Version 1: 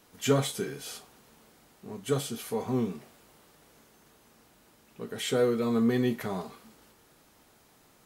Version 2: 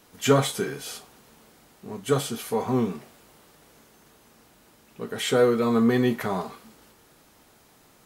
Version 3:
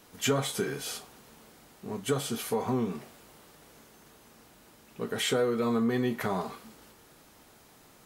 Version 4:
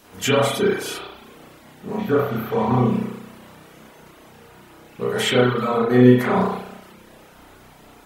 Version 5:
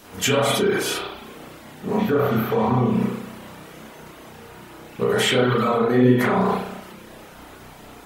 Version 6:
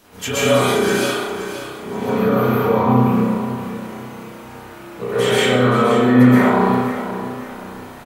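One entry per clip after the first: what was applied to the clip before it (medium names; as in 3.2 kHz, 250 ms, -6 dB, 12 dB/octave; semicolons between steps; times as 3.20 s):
dynamic bell 1.1 kHz, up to +5 dB, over -46 dBFS, Q 0.78; trim +4 dB
compression 3:1, threshold -26 dBFS, peak gain reduction 10 dB
spring tank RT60 1.1 s, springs 32 ms, chirp 60 ms, DRR -7.5 dB; spectral replace 2.01–2.71 s, 1.8–12 kHz after; reverb removal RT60 0.62 s; trim +4.5 dB
in parallel at +0.5 dB: compressor with a negative ratio -24 dBFS, ratio -1; on the sum: flange 1.8 Hz, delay 8.7 ms, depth 8.9 ms, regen -65%
feedback delay 525 ms, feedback 34%, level -11 dB; plate-style reverb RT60 1.2 s, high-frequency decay 0.5×, pre-delay 110 ms, DRR -8.5 dB; trim -5 dB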